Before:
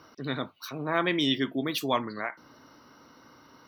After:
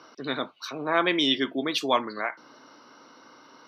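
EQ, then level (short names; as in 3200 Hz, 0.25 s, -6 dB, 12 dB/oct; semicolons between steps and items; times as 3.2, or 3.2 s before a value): BPF 170–5700 Hz; tone controls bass -7 dB, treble +3 dB; notch 1900 Hz, Q 19; +4.0 dB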